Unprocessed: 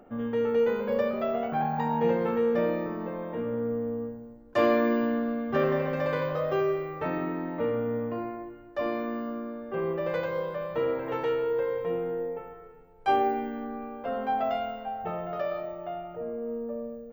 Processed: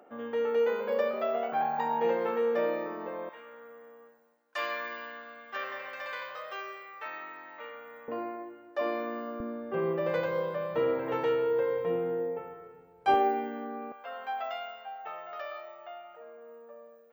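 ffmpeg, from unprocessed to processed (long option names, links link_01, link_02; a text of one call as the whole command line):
ffmpeg -i in.wav -af "asetnsamples=nb_out_samples=441:pad=0,asendcmd='3.29 highpass f 1400;8.08 highpass f 350;9.4 highpass f 110;13.14 highpass f 280;13.92 highpass f 1100',highpass=420" out.wav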